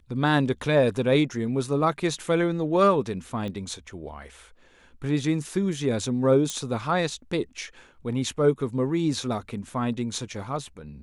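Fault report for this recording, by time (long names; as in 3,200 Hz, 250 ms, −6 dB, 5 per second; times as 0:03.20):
0:03.48: click −23 dBFS
0:06.50: click −15 dBFS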